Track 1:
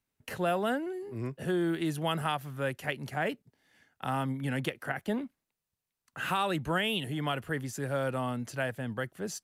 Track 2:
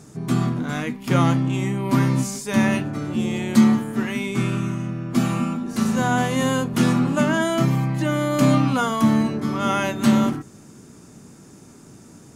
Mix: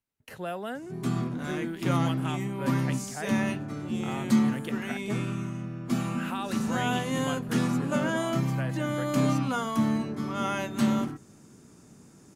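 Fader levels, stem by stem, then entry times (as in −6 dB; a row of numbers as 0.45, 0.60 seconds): −5.5, −8.0 decibels; 0.00, 0.75 seconds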